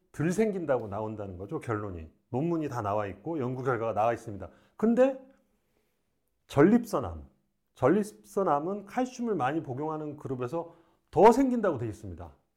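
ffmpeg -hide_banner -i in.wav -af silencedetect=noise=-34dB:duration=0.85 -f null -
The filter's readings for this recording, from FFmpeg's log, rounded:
silence_start: 5.13
silence_end: 6.51 | silence_duration: 1.38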